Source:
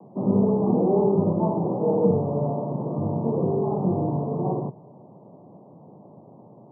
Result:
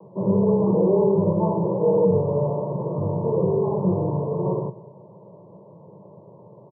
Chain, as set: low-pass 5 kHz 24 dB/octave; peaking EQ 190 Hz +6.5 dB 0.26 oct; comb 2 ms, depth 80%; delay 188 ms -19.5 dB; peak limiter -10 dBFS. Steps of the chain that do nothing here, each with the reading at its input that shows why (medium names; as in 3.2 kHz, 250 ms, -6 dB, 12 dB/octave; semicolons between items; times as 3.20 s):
low-pass 5 kHz: input has nothing above 1 kHz